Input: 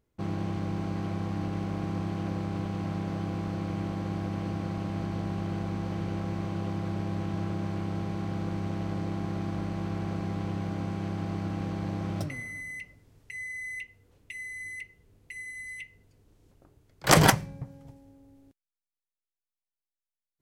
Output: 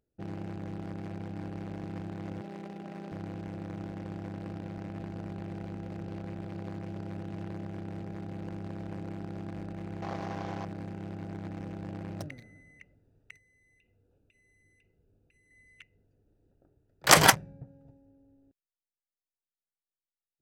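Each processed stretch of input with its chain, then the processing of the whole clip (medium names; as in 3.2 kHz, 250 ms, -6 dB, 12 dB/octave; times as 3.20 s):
2.41–3.12 s: high-pass 240 Hz + comb 5.1 ms, depth 53%
10.02–10.65 s: CVSD coder 32 kbps + peaking EQ 780 Hz +8.5 dB 1.4 oct
13.37–15.51 s: Butterworth band-stop 1.9 kHz, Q 6.3 + compression 16:1, threshold -45 dBFS
whole clip: local Wiener filter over 41 samples; bass shelf 460 Hz -12 dB; trim +3.5 dB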